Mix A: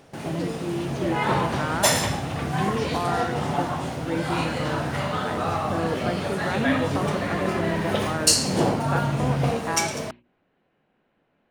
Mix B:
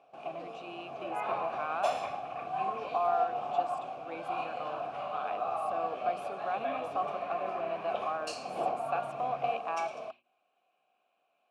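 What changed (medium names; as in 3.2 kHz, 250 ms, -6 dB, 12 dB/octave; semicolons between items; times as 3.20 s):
speech: remove tape spacing loss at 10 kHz 44 dB; second sound: add resonant low-pass 2 kHz, resonance Q 2.4; master: add vowel filter a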